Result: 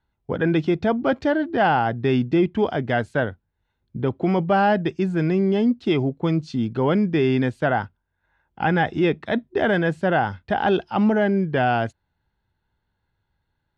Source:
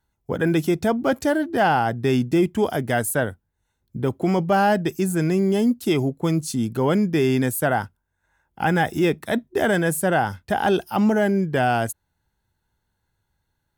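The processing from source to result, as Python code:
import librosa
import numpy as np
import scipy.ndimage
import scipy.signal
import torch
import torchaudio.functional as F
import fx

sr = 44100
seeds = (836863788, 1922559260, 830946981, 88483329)

y = scipy.signal.sosfilt(scipy.signal.butter(4, 4100.0, 'lowpass', fs=sr, output='sos'), x)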